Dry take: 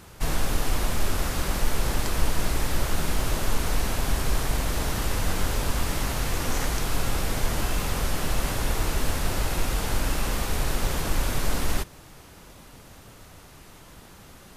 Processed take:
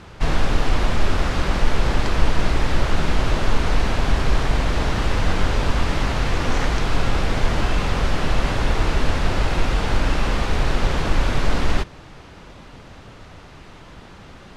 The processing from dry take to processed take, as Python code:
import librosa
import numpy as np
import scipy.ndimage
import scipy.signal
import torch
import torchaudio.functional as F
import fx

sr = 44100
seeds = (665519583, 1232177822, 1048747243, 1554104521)

y = scipy.signal.sosfilt(scipy.signal.butter(2, 4000.0, 'lowpass', fs=sr, output='sos'), x)
y = F.gain(torch.from_numpy(y), 6.5).numpy()